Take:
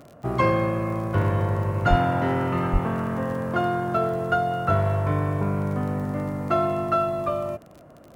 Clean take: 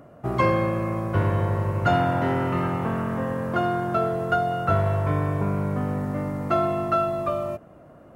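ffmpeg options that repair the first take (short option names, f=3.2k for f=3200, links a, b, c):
-filter_complex "[0:a]adeclick=t=4,asplit=3[a][b][c];[a]afade=t=out:st=1.89:d=0.02[d];[b]highpass=f=140:w=0.5412,highpass=f=140:w=1.3066,afade=t=in:st=1.89:d=0.02,afade=t=out:st=2.01:d=0.02[e];[c]afade=t=in:st=2.01:d=0.02[f];[d][e][f]amix=inputs=3:normalize=0,asplit=3[g][h][i];[g]afade=t=out:st=2.72:d=0.02[j];[h]highpass=f=140:w=0.5412,highpass=f=140:w=1.3066,afade=t=in:st=2.72:d=0.02,afade=t=out:st=2.84:d=0.02[k];[i]afade=t=in:st=2.84:d=0.02[l];[j][k][l]amix=inputs=3:normalize=0"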